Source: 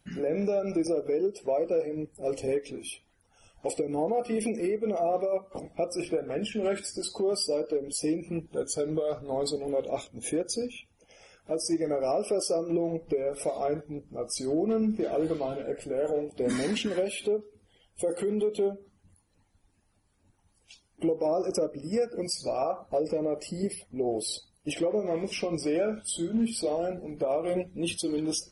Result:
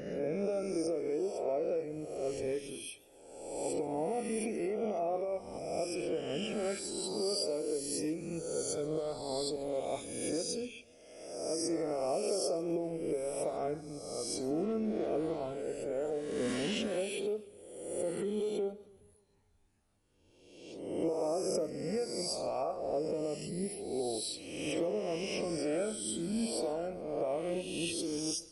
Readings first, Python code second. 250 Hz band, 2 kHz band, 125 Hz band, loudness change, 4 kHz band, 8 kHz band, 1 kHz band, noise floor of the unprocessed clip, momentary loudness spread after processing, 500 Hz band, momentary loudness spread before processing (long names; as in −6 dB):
−6.0 dB, −3.5 dB, −5.0 dB, −5.0 dB, −3.0 dB, −3.0 dB, −5.0 dB, −69 dBFS, 6 LU, −5.5 dB, 6 LU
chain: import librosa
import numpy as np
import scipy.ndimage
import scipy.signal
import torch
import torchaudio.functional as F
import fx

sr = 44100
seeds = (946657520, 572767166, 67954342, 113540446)

y = fx.spec_swells(x, sr, rise_s=1.18)
y = fx.echo_warbled(y, sr, ms=141, feedback_pct=52, rate_hz=2.8, cents=108, wet_db=-22)
y = y * librosa.db_to_amplitude(-8.5)